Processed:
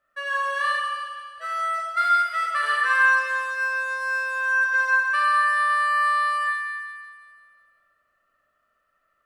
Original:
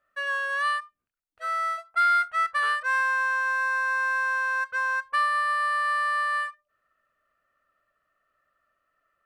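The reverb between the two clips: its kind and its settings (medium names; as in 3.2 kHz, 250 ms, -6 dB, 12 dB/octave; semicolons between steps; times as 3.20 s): Schroeder reverb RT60 1.9 s, combs from 28 ms, DRR -0.5 dB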